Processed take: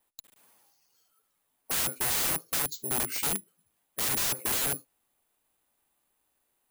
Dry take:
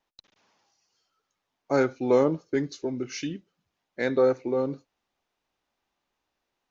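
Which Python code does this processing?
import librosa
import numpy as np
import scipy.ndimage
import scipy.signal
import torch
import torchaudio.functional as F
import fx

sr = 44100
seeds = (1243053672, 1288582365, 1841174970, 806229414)

y = fx.spec_box(x, sr, start_s=2.66, length_s=0.25, low_hz=230.0, high_hz=3000.0, gain_db=-13)
y = (np.kron(scipy.signal.resample_poly(y, 1, 4), np.eye(4)[0]) * 4)[:len(y)]
y = (np.mod(10.0 ** (17.0 / 20.0) * y + 1.0, 2.0) - 1.0) / 10.0 ** (17.0 / 20.0)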